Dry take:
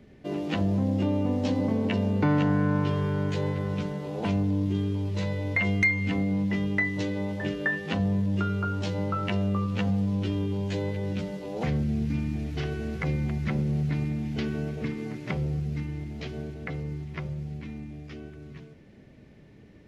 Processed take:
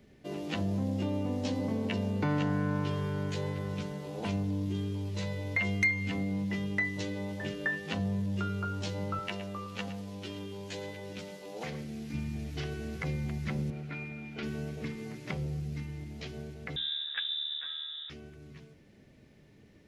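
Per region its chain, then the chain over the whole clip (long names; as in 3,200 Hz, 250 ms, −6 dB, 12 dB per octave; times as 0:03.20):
0:09.19–0:12.14: high-pass filter 380 Hz 6 dB per octave + single-tap delay 114 ms −12.5 dB
0:13.70–0:14.43: high-pass filter 84 Hz + bass and treble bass −9 dB, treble −13 dB + hollow resonant body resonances 1,400/2,400 Hz, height 16 dB, ringing for 90 ms
0:16.76–0:18.10: parametric band 2,000 Hz +12 dB 0.3 octaves + voice inversion scrambler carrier 3,700 Hz
whole clip: high-shelf EQ 4,000 Hz +9.5 dB; mains-hum notches 60/120/180/240/300 Hz; level −6 dB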